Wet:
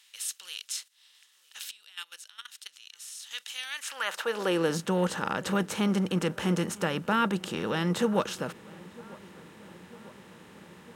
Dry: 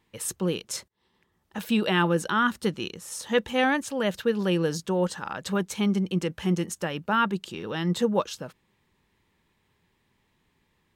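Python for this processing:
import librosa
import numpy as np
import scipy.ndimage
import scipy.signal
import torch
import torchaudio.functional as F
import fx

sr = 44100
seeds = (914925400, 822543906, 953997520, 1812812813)

y = fx.bin_compress(x, sr, power=0.6)
y = fx.level_steps(y, sr, step_db=19, at=(1.71, 3.31))
y = fx.filter_sweep_highpass(y, sr, from_hz=3700.0, to_hz=84.0, start_s=3.64, end_s=5.01, q=1.2)
y = fx.echo_filtered(y, sr, ms=950, feedback_pct=71, hz=2000.0, wet_db=-22.0)
y = F.gain(torch.from_numpy(y), -5.0).numpy()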